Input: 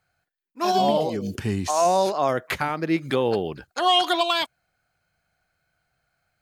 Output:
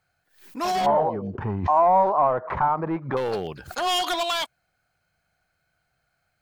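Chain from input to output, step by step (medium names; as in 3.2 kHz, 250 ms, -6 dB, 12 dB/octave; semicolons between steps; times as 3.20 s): dynamic bell 290 Hz, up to -6 dB, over -37 dBFS, Q 1.3; hard clipper -21 dBFS, distortion -10 dB; 0.86–3.17 s: resonant low-pass 980 Hz, resonance Q 3.8; swell ahead of each attack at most 130 dB/s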